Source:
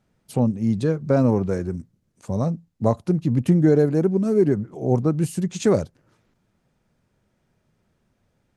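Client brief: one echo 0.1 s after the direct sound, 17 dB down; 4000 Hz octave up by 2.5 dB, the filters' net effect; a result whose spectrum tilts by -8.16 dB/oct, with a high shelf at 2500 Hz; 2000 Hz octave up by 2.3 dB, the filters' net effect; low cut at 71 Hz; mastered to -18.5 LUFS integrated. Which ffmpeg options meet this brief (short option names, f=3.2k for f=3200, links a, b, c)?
-af "highpass=71,equalizer=f=2k:t=o:g=5,highshelf=f=2.5k:g=-8,equalizer=f=4k:t=o:g=8.5,aecho=1:1:100:0.141,volume=3dB"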